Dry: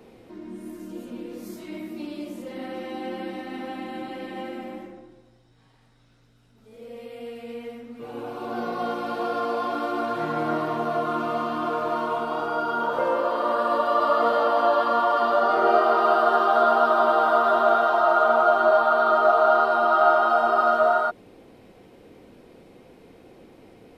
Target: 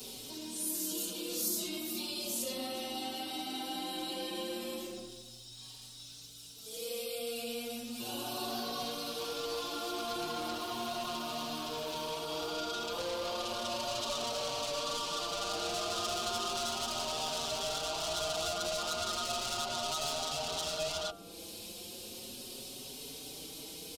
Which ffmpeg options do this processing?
-filter_complex "[0:a]bandreject=f=98.19:t=h:w=4,bandreject=f=196.38:t=h:w=4,bandreject=f=294.57:t=h:w=4,bandreject=f=392.76:t=h:w=4,bandreject=f=490.95:t=h:w=4,bandreject=f=589.14:t=h:w=4,bandreject=f=687.33:t=h:w=4,bandreject=f=785.52:t=h:w=4,bandreject=f=883.71:t=h:w=4,bandreject=f=981.9:t=h:w=4,bandreject=f=1.08009k:t=h:w=4,bandreject=f=1.17828k:t=h:w=4,bandreject=f=1.27647k:t=h:w=4,bandreject=f=1.37466k:t=h:w=4,bandreject=f=1.47285k:t=h:w=4,bandreject=f=1.57104k:t=h:w=4,bandreject=f=1.66923k:t=h:w=4,bandreject=f=1.76742k:t=h:w=4,bandreject=f=1.86561k:t=h:w=4,bandreject=f=1.9638k:t=h:w=4,bandreject=f=2.06199k:t=h:w=4,bandreject=f=2.16018k:t=h:w=4,bandreject=f=2.25837k:t=h:w=4,bandreject=f=2.35656k:t=h:w=4,bandreject=f=2.45475k:t=h:w=4,bandreject=f=2.55294k:t=h:w=4,bandreject=f=2.65113k:t=h:w=4,bandreject=f=2.74932k:t=h:w=4,bandreject=f=2.84751k:t=h:w=4,bandreject=f=2.9457k:t=h:w=4,bandreject=f=3.04389k:t=h:w=4,bandreject=f=3.14208k:t=h:w=4,bandreject=f=3.24027k:t=h:w=4,asoftclip=type=tanh:threshold=-26.5dB,acrossover=split=510|1600[a][b][c];[a]acompressor=threshold=-41dB:ratio=4[d];[b]acompressor=threshold=-40dB:ratio=4[e];[c]acompressor=threshold=-57dB:ratio=4[f];[d][e][f]amix=inputs=3:normalize=0,aexciter=amount=13.2:drive=6.2:freq=3k,asplit=2[g][h];[h]adelay=4.9,afreqshift=0.35[i];[g][i]amix=inputs=2:normalize=1,volume=1.5dB"

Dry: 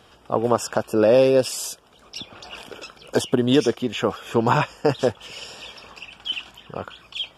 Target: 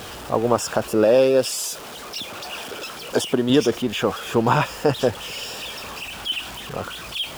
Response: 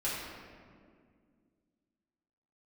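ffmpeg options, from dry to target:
-filter_complex "[0:a]aeval=exprs='val(0)+0.5*0.0282*sgn(val(0))':c=same,asettb=1/sr,asplit=3[a][b][c];[a]atrim=end=1.044[d];[b]atrim=start=1.04:end=3.5,asetpts=PTS-STARTPTS,afade=t=in:d=0.004:c=qsin,afade=t=out:st=2.456:d=0.004:c=qsin,lowshelf=f=110:g=-11.5[e];[c]atrim=start=3.496[f];[d][e]acrossfade=d=0.004:c1=hsin:c2=qsin[g];[g][f]acrossfade=d=0.004:c1=qsin:c2=hsin"

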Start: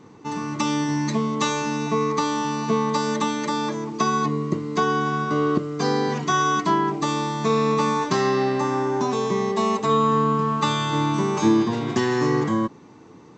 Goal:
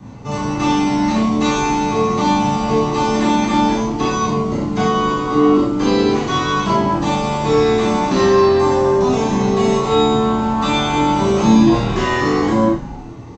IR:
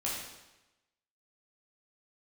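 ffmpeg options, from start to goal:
-filter_complex "[0:a]acrossover=split=4200[a][b];[b]acompressor=threshold=-41dB:ratio=4:attack=1:release=60[c];[a][c]amix=inputs=2:normalize=0,equalizer=f=92:t=o:w=3:g=10.5,acrossover=split=280|490|2100[d][e][f][g];[d]acompressor=threshold=-31dB:ratio=8[h];[f]alimiter=limit=-23dB:level=0:latency=1:release=77[i];[h][e][i][g]amix=inputs=4:normalize=0,asplit=3[j][k][l];[k]asetrate=29433,aresample=44100,atempo=1.49831,volume=-8dB[m];[l]asetrate=37084,aresample=44100,atempo=1.18921,volume=-16dB[n];[j][m][n]amix=inputs=3:normalize=0,flanger=delay=1.1:depth=2.4:regen=-44:speed=0.43:shape=triangular,asplit=2[o][p];[p]adelay=36,volume=-4.5dB[q];[o][q]amix=inputs=2:normalize=0,asplit=7[r][s][t][u][v][w][x];[s]adelay=121,afreqshift=-86,volume=-15dB[y];[t]adelay=242,afreqshift=-172,volume=-19.7dB[z];[u]adelay=363,afreqshift=-258,volume=-24.5dB[aa];[v]adelay=484,afreqshift=-344,volume=-29.2dB[ab];[w]adelay=605,afreqshift=-430,volume=-33.9dB[ac];[x]adelay=726,afreqshift=-516,volume=-38.7dB[ad];[r][y][z][aa][ab][ac][ad]amix=inputs=7:normalize=0[ae];[1:a]atrim=start_sample=2205,atrim=end_sample=4410[af];[ae][af]afir=irnorm=-1:irlink=0,volume=6.5dB"

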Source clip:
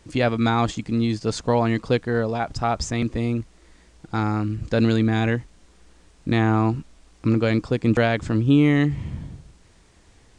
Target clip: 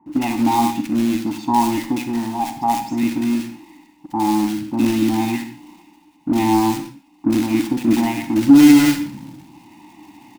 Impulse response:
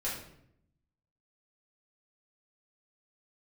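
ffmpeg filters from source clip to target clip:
-filter_complex "[0:a]highpass=160,bandreject=f=420:w=12,aecho=1:1:1.1:1,areverse,acompressor=mode=upward:threshold=-33dB:ratio=2.5,areverse,asplit=3[a][b][c];[a]bandpass=f=300:t=q:w=8,volume=0dB[d];[b]bandpass=f=870:t=q:w=8,volume=-6dB[e];[c]bandpass=f=2.24k:t=q:w=8,volume=-9dB[f];[d][e][f]amix=inputs=3:normalize=0,acontrast=24,acrusher=bits=3:mode=log:mix=0:aa=0.000001,acrossover=split=1300[g][h];[h]adelay=60[i];[g][i]amix=inputs=2:normalize=0,asplit=2[j][k];[1:a]atrim=start_sample=2205,afade=t=out:st=0.19:d=0.01,atrim=end_sample=8820,adelay=43[l];[k][l]afir=irnorm=-1:irlink=0,volume=-11.5dB[m];[j][m]amix=inputs=2:normalize=0,alimiter=level_in=9.5dB:limit=-1dB:release=50:level=0:latency=1,volume=-1dB"

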